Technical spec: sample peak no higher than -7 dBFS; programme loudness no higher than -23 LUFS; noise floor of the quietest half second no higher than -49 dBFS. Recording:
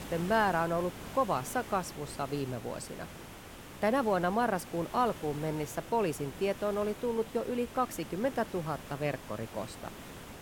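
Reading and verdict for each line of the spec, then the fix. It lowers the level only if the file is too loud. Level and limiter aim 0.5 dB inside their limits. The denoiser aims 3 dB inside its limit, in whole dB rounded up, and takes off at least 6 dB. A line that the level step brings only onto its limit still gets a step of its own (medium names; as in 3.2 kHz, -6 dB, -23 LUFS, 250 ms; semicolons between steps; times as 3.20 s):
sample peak -15.5 dBFS: pass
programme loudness -33.0 LUFS: pass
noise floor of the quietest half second -48 dBFS: fail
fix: noise reduction 6 dB, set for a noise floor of -48 dBFS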